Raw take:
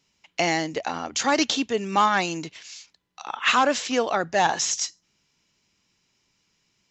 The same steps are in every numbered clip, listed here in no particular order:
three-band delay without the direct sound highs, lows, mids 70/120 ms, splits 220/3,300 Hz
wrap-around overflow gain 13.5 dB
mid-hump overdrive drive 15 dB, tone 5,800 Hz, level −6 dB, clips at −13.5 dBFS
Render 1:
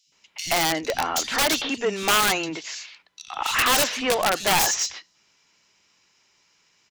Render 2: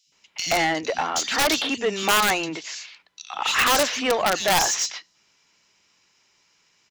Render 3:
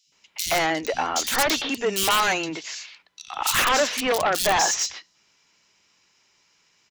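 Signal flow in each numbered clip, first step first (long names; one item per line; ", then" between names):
mid-hump overdrive, then three-band delay without the direct sound, then wrap-around overflow
three-band delay without the direct sound, then mid-hump overdrive, then wrap-around overflow
mid-hump overdrive, then wrap-around overflow, then three-band delay without the direct sound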